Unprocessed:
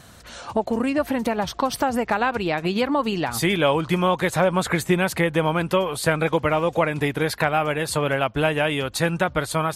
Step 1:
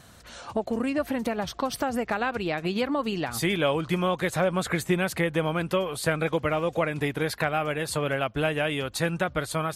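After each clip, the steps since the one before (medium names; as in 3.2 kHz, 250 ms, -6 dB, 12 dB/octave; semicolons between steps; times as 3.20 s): dynamic bell 920 Hz, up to -6 dB, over -38 dBFS, Q 4.7; trim -4.5 dB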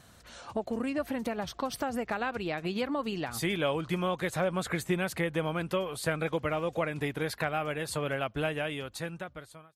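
fade out at the end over 1.35 s; trim -5 dB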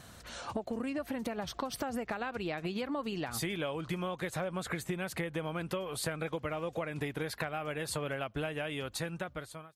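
compression 6:1, threshold -37 dBFS, peak gain reduction 12.5 dB; trim +4 dB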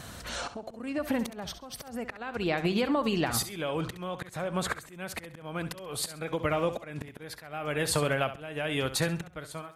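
slow attack 431 ms; flutter echo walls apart 11.5 m, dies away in 0.33 s; trim +8.5 dB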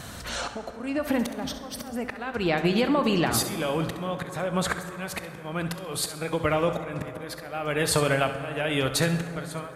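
reverberation RT60 3.6 s, pre-delay 13 ms, DRR 9 dB; trim +4 dB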